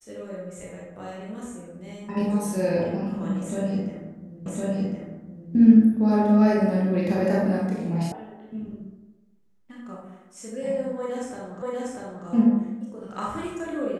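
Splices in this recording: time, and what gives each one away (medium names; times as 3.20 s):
4.46 s: repeat of the last 1.06 s
8.12 s: sound stops dead
11.62 s: repeat of the last 0.64 s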